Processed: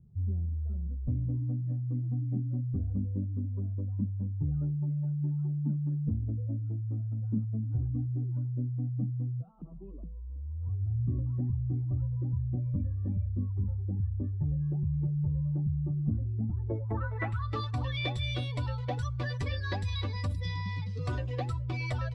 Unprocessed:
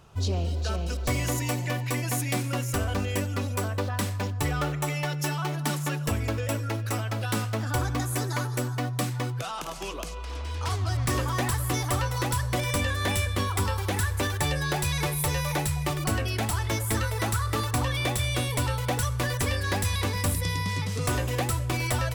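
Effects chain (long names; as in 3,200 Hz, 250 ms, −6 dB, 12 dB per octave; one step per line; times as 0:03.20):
expanding power law on the bin magnitudes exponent 1.7
low-pass filter sweep 210 Hz → 4,400 Hz, 0:16.43–0:17.51
level −5.5 dB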